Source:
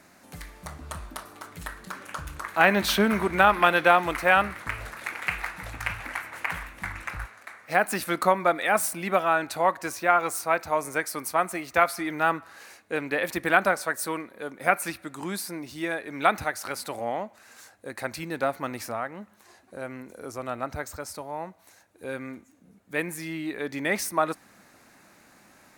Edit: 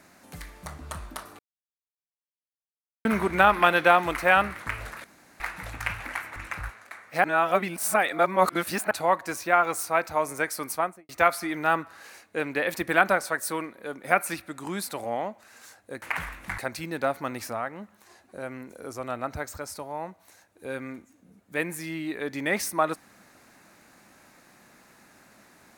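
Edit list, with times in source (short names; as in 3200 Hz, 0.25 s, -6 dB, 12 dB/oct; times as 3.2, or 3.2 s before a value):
1.39–3.05 mute
5.04–5.4 room tone
6.36–6.92 move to 17.97
7.8–9.47 reverse
11.27–11.65 studio fade out
15.43–16.82 cut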